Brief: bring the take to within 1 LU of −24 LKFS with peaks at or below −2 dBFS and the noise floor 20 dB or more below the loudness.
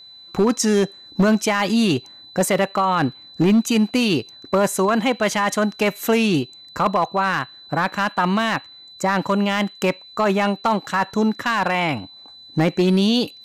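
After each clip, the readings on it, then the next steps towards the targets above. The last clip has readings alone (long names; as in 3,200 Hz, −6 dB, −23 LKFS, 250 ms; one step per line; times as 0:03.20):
share of clipped samples 1.1%; peaks flattened at −11.0 dBFS; interfering tone 4,000 Hz; level of the tone −41 dBFS; integrated loudness −20.5 LKFS; sample peak −11.0 dBFS; target loudness −24.0 LKFS
→ clipped peaks rebuilt −11 dBFS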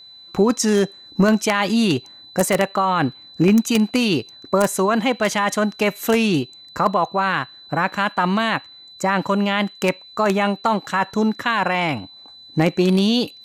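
share of clipped samples 0.0%; interfering tone 4,000 Hz; level of the tone −41 dBFS
→ notch filter 4,000 Hz, Q 30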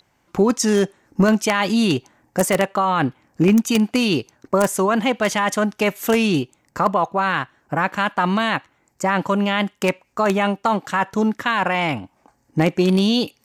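interfering tone none found; integrated loudness −20.0 LKFS; sample peak −2.0 dBFS; target loudness −24.0 LKFS
→ level −4 dB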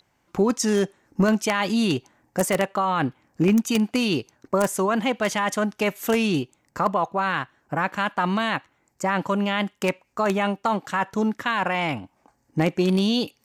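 integrated loudness −24.0 LKFS; sample peak −6.0 dBFS; background noise floor −69 dBFS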